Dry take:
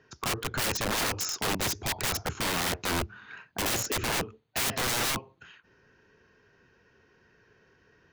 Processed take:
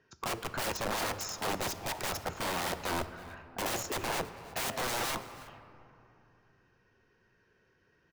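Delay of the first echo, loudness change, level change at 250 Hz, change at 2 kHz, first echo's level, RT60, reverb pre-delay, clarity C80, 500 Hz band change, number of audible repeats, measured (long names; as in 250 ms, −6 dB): 325 ms, −5.5 dB, −5.0 dB, −5.5 dB, −21.0 dB, 2.7 s, 3 ms, 12.5 dB, −2.0 dB, 1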